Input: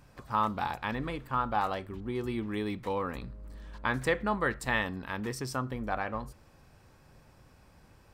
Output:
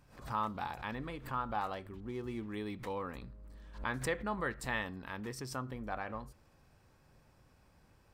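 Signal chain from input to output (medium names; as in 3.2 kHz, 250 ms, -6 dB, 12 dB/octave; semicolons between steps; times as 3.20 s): 2.07–2.53 s: median filter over 9 samples; swell ahead of each attack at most 130 dB/s; trim -7 dB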